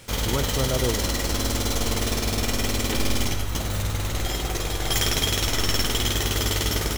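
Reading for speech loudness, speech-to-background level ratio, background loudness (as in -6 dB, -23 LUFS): -29.0 LUFS, -4.5 dB, -24.5 LUFS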